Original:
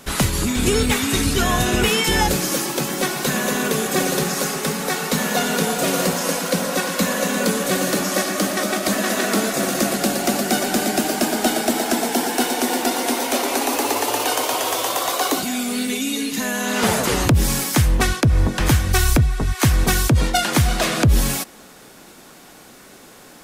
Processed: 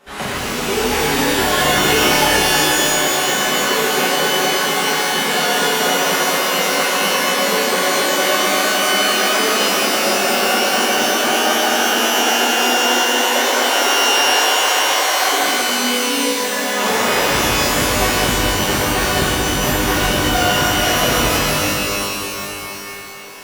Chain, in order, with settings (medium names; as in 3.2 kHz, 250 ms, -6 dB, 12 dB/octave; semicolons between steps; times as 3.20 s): tone controls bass -13 dB, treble -12 dB; pitch-shifted reverb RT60 3 s, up +12 st, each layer -2 dB, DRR -11.5 dB; trim -7.5 dB